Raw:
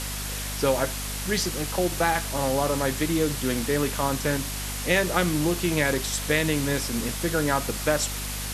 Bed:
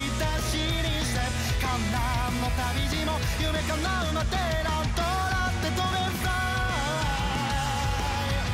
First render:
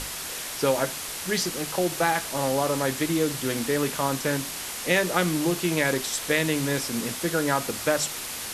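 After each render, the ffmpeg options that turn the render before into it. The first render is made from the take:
-af "bandreject=f=50:t=h:w=6,bandreject=f=100:t=h:w=6,bandreject=f=150:t=h:w=6,bandreject=f=200:t=h:w=6,bandreject=f=250:t=h:w=6"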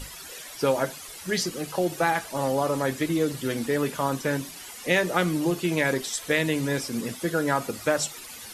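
-af "afftdn=nr=13:nf=-35"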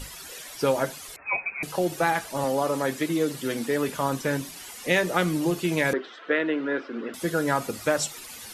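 -filter_complex "[0:a]asettb=1/sr,asplit=3[s0][s1][s2];[s0]atrim=end=1.164[s3];[s1]atrim=start=1.16:end=1.63,asetpts=PTS-STARTPTS,afade=t=in:d=0.004:c=qsin,afade=t=out:st=0.466:d=0.004:c=qsin,lowpass=f=2300:t=q:w=0.5098,lowpass=f=2300:t=q:w=0.6013,lowpass=f=2300:t=q:w=0.9,lowpass=f=2300:t=q:w=2.563,afreqshift=-2700[s4];[s2]atrim=start=1.626[s5];[s3][s4]acrossfade=d=0.004:c1=hsin:c2=qsin[s6];[s6][s5]acrossfade=d=0.004:c1=qsin:c2=hsin,asettb=1/sr,asplit=3[s7][s8][s9];[s7]atrim=end=2.444[s10];[s8]atrim=start=2.44:end=3.89,asetpts=PTS-STARTPTS,afade=t=in:d=0.004:c=qsin,afade=t=out:st=1.446:d=0.004:c=qsin,highpass=160[s11];[s9]atrim=start=3.886[s12];[s10][s11]acrossfade=d=0.004:c1=hsin:c2=qsin[s13];[s13][s12]acrossfade=d=0.004:c1=qsin:c2=hsin,asettb=1/sr,asplit=3[s14][s15][s16];[s14]atrim=end=5.934[s17];[s15]atrim=start=5.93:end=7.14,asetpts=PTS-STARTPTS,afade=t=in:d=0.004:c=qsin,afade=t=out:st=1.206:d=0.004:c=qsin,highpass=f=260:w=0.5412,highpass=f=260:w=1.3066,equalizer=f=350:t=q:w=4:g=4,equalizer=f=880:t=q:w=4:g=-4,equalizer=f=1400:t=q:w=4:g=9,equalizer=f=2300:t=q:w=4:g=-6,lowpass=f=2800:w=0.5412,lowpass=f=2800:w=1.3066[s18];[s16]atrim=start=7.136[s19];[s17][s18]acrossfade=d=0.004:c1=hsin:c2=qsin[s20];[s20][s19]acrossfade=d=0.004:c1=qsin:c2=hsin"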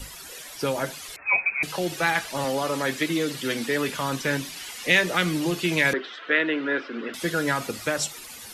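-filter_complex "[0:a]acrossover=split=270|1600|5400[s0][s1][s2][s3];[s1]alimiter=limit=0.0891:level=0:latency=1[s4];[s2]dynaudnorm=f=220:g=9:m=2.51[s5];[s0][s4][s5][s3]amix=inputs=4:normalize=0"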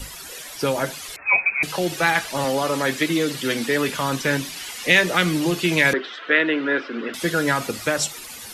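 -af "volume=1.58,alimiter=limit=0.794:level=0:latency=1"

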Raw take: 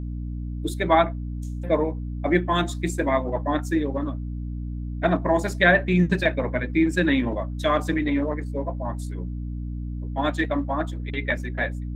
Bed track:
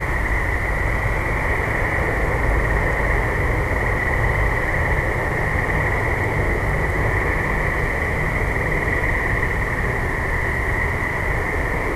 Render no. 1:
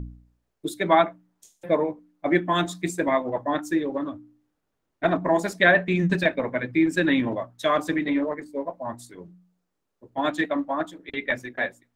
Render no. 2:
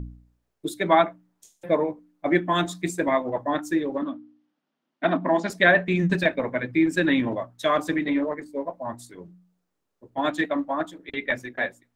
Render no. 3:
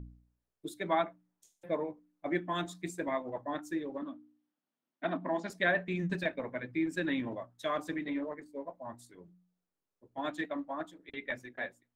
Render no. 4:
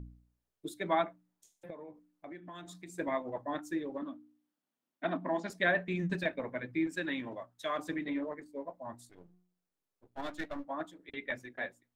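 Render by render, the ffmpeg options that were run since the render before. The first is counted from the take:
-af "bandreject=f=60:t=h:w=4,bandreject=f=120:t=h:w=4,bandreject=f=180:t=h:w=4,bandreject=f=240:t=h:w=4,bandreject=f=300:t=h:w=4"
-filter_complex "[0:a]asettb=1/sr,asplit=3[s0][s1][s2];[s0]atrim=end=4.024[s3];[s1]atrim=start=4.02:end=5.5,asetpts=PTS-STARTPTS,afade=t=in:d=0.004:c=qsin,afade=t=out:st=1.476:d=0.004:c=qsin,highpass=f=170:w=0.5412,highpass=f=170:w=1.3066,equalizer=f=240:t=q:w=4:g=7,equalizer=f=440:t=q:w=4:g=-7,equalizer=f=3100:t=q:w=4:g=4,lowpass=f=5500:w=0.5412,lowpass=f=5500:w=1.3066[s4];[s2]atrim=start=5.496[s5];[s3][s4]acrossfade=d=0.004:c1=hsin:c2=qsin[s6];[s6][s5]acrossfade=d=0.004:c1=qsin:c2=hsin"
-af "volume=0.266"
-filter_complex "[0:a]asettb=1/sr,asplit=3[s0][s1][s2];[s0]atrim=end=1.704[s3];[s1]atrim=start=1.7:end=2.98,asetpts=PTS-STARTPTS,afade=t=in:d=0.004:c=qsin,afade=t=out:st=1.276:d=0.004:c=qsin,acompressor=threshold=0.00631:ratio=6:attack=3.2:release=140:knee=1:detection=peak[s4];[s2]atrim=start=2.976[s5];[s3][s4]acrossfade=d=0.004:c1=hsin:c2=qsin[s6];[s6][s5]acrossfade=d=0.004:c1=qsin:c2=hsin,asettb=1/sr,asplit=3[s7][s8][s9];[s7]atrim=end=6.874[s10];[s8]atrim=start=6.87:end=7.79,asetpts=PTS-STARTPTS,afade=t=in:d=0.004:c=qsin,afade=t=out:st=0.916:d=0.004:c=qsin,lowshelf=f=420:g=-7[s11];[s9]atrim=start=7.786[s12];[s10][s11]acrossfade=d=0.004:c1=hsin:c2=qsin[s13];[s13][s12]acrossfade=d=0.004:c1=qsin:c2=hsin,asettb=1/sr,asplit=3[s14][s15][s16];[s14]atrim=end=9.094[s17];[s15]atrim=start=9.09:end=10.65,asetpts=PTS-STARTPTS,afade=t=in:d=0.004:c=qsin,afade=t=out:st=1.556:d=0.004:c=qsin,aeval=exprs='if(lt(val(0),0),0.251*val(0),val(0))':c=same[s18];[s16]atrim=start=10.646[s19];[s17][s18]acrossfade=d=0.004:c1=hsin:c2=qsin[s20];[s20][s19]acrossfade=d=0.004:c1=qsin:c2=hsin"

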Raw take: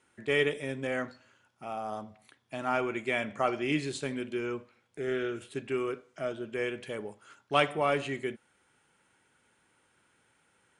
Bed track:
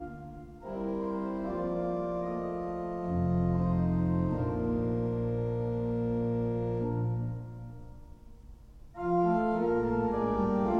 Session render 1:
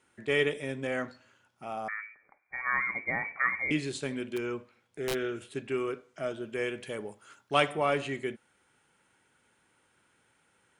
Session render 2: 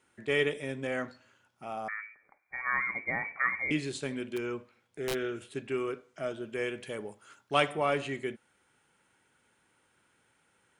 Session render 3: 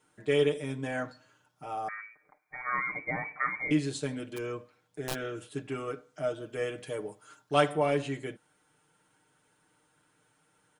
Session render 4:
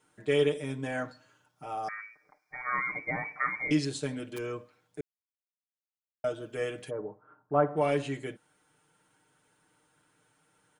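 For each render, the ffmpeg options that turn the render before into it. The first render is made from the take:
-filter_complex "[0:a]asettb=1/sr,asplit=3[s0][s1][s2];[s0]atrim=end=1.884[s3];[s1]atrim=start=1.88:end=3.71,asetpts=PTS-STARTPTS,afade=t=in:d=0.004:c=qsin,afade=t=out:st=1.826:d=0.004:c=qsin,lowpass=f=2100:t=q:w=0.5098,lowpass=f=2100:t=q:w=0.6013,lowpass=f=2100:t=q:w=0.9,lowpass=f=2100:t=q:w=2.563,afreqshift=-2500[s4];[s2]atrim=start=3.706[s5];[s3][s4]acrossfade=d=0.004:c1=hsin:c2=qsin[s6];[s6][s5]acrossfade=d=0.004:c1=qsin:c2=hsin,asplit=3[s7][s8][s9];[s7]afade=t=out:st=4.36:d=0.02[s10];[s8]aeval=exprs='(mod(17.8*val(0)+1,2)-1)/17.8':c=same,afade=t=in:st=4.36:d=0.02,afade=t=out:st=5.13:d=0.02[s11];[s9]afade=t=in:st=5.13:d=0.02[s12];[s10][s11][s12]amix=inputs=3:normalize=0,asettb=1/sr,asplit=3[s13][s14][s15];[s13]atrim=end=6.234[s16];[s14]atrim=start=6.23:end=7.77,asetpts=PTS-STARTPTS,afade=t=in:d=0.004:c=qsin,afade=t=out:st=1.536:d=0.004:c=qsin,highshelf=f=8300:g=7[s17];[s15]atrim=start=7.766[s18];[s16][s17]acrossfade=d=0.004:c1=hsin:c2=qsin[s19];[s19][s18]acrossfade=d=0.004:c1=qsin:c2=hsin"
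-af "volume=0.891"
-af "equalizer=f=2300:t=o:w=1:g=-6,aecho=1:1:6.6:0.85"
-filter_complex "[0:a]asettb=1/sr,asplit=3[s0][s1][s2];[s0]atrim=end=1.834[s3];[s1]atrim=start=1.83:end=3.85,asetpts=PTS-STARTPTS,afade=t=in:d=0.004:c=qsin,afade=t=out:st=2.016:d=0.004:c=qsin,equalizer=f=5300:t=o:w=0.47:g=14.5[s4];[s2]atrim=start=3.846[s5];[s3][s4]acrossfade=d=0.004:c1=hsin:c2=qsin[s6];[s6][s5]acrossfade=d=0.004:c1=qsin:c2=hsin,asplit=3[s7][s8][s9];[s7]afade=t=out:st=6.89:d=0.02[s10];[s8]lowpass=f=1300:w=0.5412,lowpass=f=1300:w=1.3066,afade=t=in:st=6.89:d=0.02,afade=t=out:st=7.76:d=0.02[s11];[s9]afade=t=in:st=7.76:d=0.02[s12];[s10][s11][s12]amix=inputs=3:normalize=0,asplit=3[s13][s14][s15];[s13]atrim=end=5.01,asetpts=PTS-STARTPTS,afade=t=out:st=5.006:d=0.004:c=hsin[s16];[s14]atrim=start=5.01:end=6.24,asetpts=PTS-STARTPTS,volume=0[s17];[s15]atrim=start=6.24,asetpts=PTS-STARTPTS,afade=t=in:d=0.004:c=hsin[s18];[s16][s17][s18]concat=n=3:v=0:a=1"

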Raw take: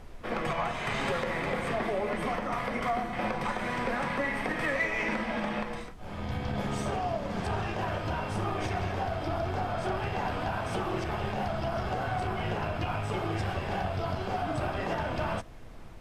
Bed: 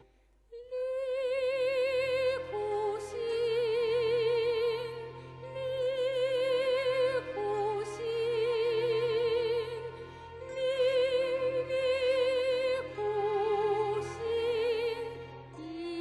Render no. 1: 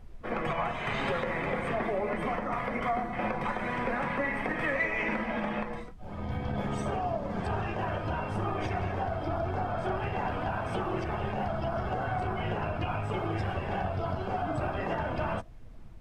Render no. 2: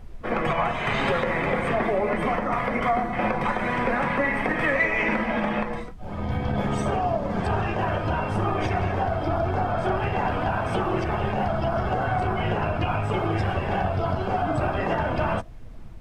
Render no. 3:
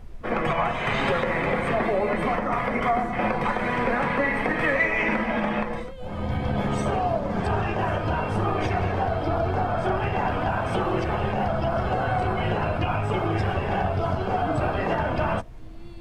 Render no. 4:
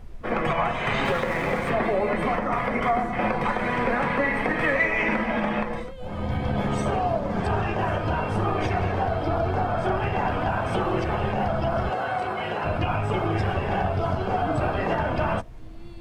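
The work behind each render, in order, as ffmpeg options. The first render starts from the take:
-af "afftdn=nr=10:nf=-42"
-af "volume=2.24"
-filter_complex "[1:a]volume=0.299[s0];[0:a][s0]amix=inputs=2:normalize=0"
-filter_complex "[0:a]asettb=1/sr,asplit=3[s0][s1][s2];[s0]atrim=end=1.054[s3];[s1]atrim=start=1.05:end=1.7,asetpts=PTS-STARTPTS,afade=t=in:d=0.004:c=qsin,afade=t=out:st=0.646:d=0.004:c=qsin,aeval=exprs='sgn(val(0))*max(abs(val(0))-0.00841,0)':c=same[s4];[s2]atrim=start=1.696[s5];[s3][s4]acrossfade=d=0.004:c1=hsin:c2=qsin[s6];[s6][s5]acrossfade=d=0.004:c1=qsin:c2=hsin,asettb=1/sr,asplit=3[s7][s8][s9];[s7]atrim=end=11.904[s10];[s8]atrim=start=11.9:end=12.65,asetpts=PTS-STARTPTS,afade=t=in:d=0.004:c=qsin,afade=t=out:st=0.746:d=0.004:c=qsin,highpass=f=460:p=1[s11];[s9]atrim=start=12.646[s12];[s10][s11]acrossfade=d=0.004:c1=hsin:c2=qsin[s13];[s13][s12]acrossfade=d=0.004:c1=qsin:c2=hsin"

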